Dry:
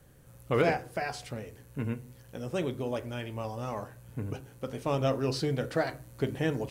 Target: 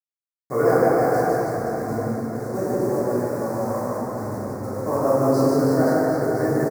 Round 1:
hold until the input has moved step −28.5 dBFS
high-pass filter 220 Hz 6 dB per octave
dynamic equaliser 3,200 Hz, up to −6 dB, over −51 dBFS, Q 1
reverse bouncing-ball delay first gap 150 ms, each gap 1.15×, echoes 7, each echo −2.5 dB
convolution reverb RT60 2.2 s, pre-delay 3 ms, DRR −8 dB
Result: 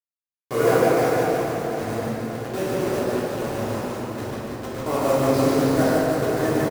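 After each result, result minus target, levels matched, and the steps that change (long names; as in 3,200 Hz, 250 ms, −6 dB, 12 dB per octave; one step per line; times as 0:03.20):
4,000 Hz band +9.5 dB; hold until the input has moved: distortion +10 dB
add after dynamic equaliser: Butterworth band-reject 3,000 Hz, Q 0.81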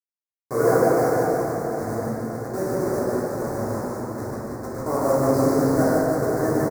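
hold until the input has moved: distortion +10 dB
change: hold until the input has moved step −38 dBFS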